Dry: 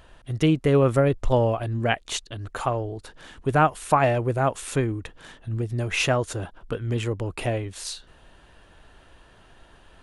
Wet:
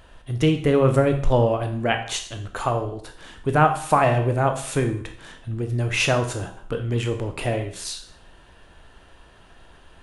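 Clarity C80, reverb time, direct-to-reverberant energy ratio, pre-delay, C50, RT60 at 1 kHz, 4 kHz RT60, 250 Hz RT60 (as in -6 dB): 13.5 dB, 0.55 s, 5.5 dB, 15 ms, 9.5 dB, 0.55 s, 0.55 s, 0.55 s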